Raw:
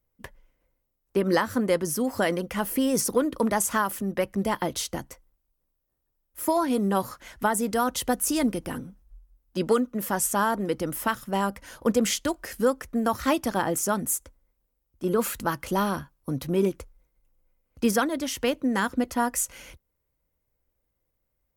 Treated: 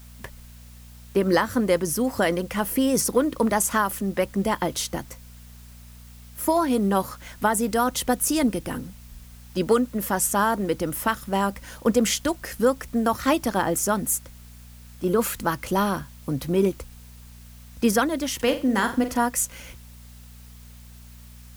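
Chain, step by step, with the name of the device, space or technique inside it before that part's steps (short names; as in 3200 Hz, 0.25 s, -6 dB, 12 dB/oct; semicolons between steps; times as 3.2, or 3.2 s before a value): video cassette with head-switching buzz (buzz 60 Hz, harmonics 4, -48 dBFS -7 dB/oct; white noise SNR 28 dB); 18.35–19.17 flutter echo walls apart 7.5 m, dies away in 0.32 s; gain +2.5 dB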